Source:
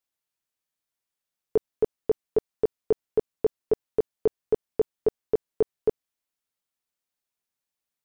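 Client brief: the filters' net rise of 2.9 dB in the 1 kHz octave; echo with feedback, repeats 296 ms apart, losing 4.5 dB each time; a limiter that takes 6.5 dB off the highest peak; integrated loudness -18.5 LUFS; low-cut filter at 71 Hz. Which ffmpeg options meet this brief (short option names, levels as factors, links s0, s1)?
-af "highpass=71,equalizer=f=1000:t=o:g=4,alimiter=limit=0.112:level=0:latency=1,aecho=1:1:296|592|888|1184|1480|1776|2072|2368|2664:0.596|0.357|0.214|0.129|0.0772|0.0463|0.0278|0.0167|0.01,volume=5.31"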